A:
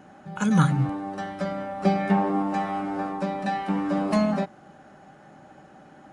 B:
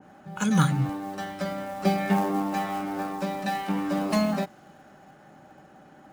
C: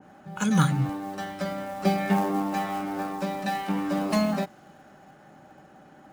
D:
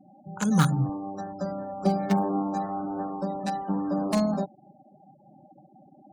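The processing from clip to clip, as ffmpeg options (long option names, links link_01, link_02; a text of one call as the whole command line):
ffmpeg -i in.wav -filter_complex "[0:a]acrossover=split=540|1600[link_01][link_02][link_03];[link_02]acrusher=bits=5:mode=log:mix=0:aa=0.000001[link_04];[link_01][link_04][link_03]amix=inputs=3:normalize=0,adynamicequalizer=threshold=0.00631:dfrequency=2100:dqfactor=0.7:tfrequency=2100:tqfactor=0.7:attack=5:release=100:ratio=0.375:range=3:mode=boostabove:tftype=highshelf,volume=-2dB" out.wav
ffmpeg -i in.wav -af anull out.wav
ffmpeg -i in.wav -filter_complex "[0:a]acrossover=split=410|1300|4300[link_01][link_02][link_03][link_04];[link_03]acrusher=bits=4:mix=0:aa=0.000001[link_05];[link_01][link_02][link_05][link_04]amix=inputs=4:normalize=0,afftfilt=real='re*gte(hypot(re,im),0.00891)':imag='im*gte(hypot(re,im),0.00891)':win_size=1024:overlap=0.75" out.wav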